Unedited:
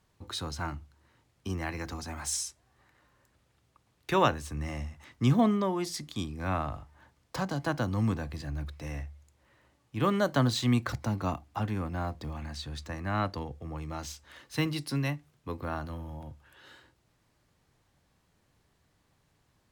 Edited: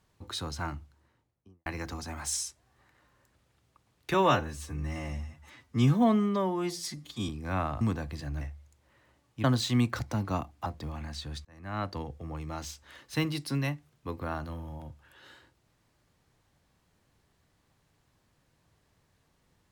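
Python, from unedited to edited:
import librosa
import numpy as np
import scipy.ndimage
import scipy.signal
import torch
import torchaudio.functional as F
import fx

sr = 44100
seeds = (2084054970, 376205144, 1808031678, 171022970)

y = fx.studio_fade_out(x, sr, start_s=0.76, length_s=0.9)
y = fx.edit(y, sr, fx.stretch_span(start_s=4.14, length_s=2.1, factor=1.5),
    fx.cut(start_s=6.76, length_s=1.26),
    fx.cut(start_s=8.62, length_s=0.35),
    fx.cut(start_s=10.0, length_s=0.37),
    fx.cut(start_s=11.59, length_s=0.48),
    fx.fade_in_span(start_s=12.86, length_s=0.54), tone=tone)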